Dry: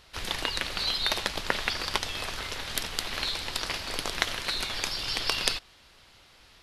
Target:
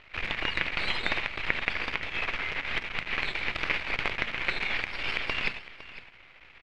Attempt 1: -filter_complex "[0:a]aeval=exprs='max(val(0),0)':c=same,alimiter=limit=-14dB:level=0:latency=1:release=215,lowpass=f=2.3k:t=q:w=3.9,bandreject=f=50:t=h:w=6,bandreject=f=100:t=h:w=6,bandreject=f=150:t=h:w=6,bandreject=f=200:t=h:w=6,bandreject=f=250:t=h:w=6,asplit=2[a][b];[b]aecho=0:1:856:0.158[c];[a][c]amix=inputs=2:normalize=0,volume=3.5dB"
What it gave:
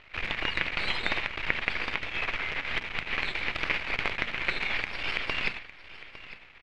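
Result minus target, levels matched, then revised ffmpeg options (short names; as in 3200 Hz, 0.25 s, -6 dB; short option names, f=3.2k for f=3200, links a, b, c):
echo 0.348 s late
-filter_complex "[0:a]aeval=exprs='max(val(0),0)':c=same,alimiter=limit=-14dB:level=0:latency=1:release=215,lowpass=f=2.3k:t=q:w=3.9,bandreject=f=50:t=h:w=6,bandreject=f=100:t=h:w=6,bandreject=f=150:t=h:w=6,bandreject=f=200:t=h:w=6,bandreject=f=250:t=h:w=6,asplit=2[a][b];[b]aecho=0:1:508:0.158[c];[a][c]amix=inputs=2:normalize=0,volume=3.5dB"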